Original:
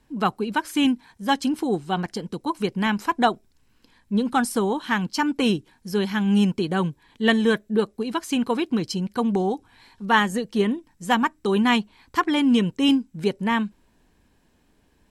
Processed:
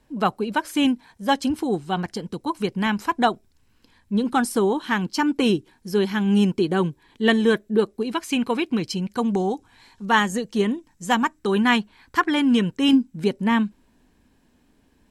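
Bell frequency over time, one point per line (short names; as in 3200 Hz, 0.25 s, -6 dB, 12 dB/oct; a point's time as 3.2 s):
bell +6 dB 0.48 oct
580 Hz
from 1.5 s 85 Hz
from 4.24 s 360 Hz
from 8.13 s 2400 Hz
from 9.1 s 6800 Hz
from 11.39 s 1600 Hz
from 12.93 s 250 Hz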